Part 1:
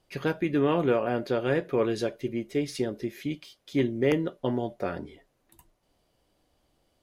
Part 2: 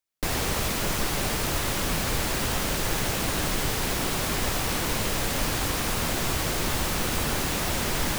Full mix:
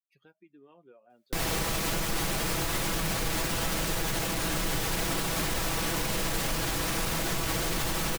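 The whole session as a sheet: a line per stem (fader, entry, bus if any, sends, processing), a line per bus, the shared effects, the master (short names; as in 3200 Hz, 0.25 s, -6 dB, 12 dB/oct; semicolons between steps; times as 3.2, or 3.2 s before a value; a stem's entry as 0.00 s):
-18.0 dB, 0.00 s, no send, per-bin expansion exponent 2; HPF 210 Hz 12 dB/oct; compressor 2:1, threshold -43 dBFS, peak gain reduction 11.5 dB
-1.0 dB, 1.10 s, no send, comb 6.1 ms, depth 50%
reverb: off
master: limiter -19.5 dBFS, peak gain reduction 6.5 dB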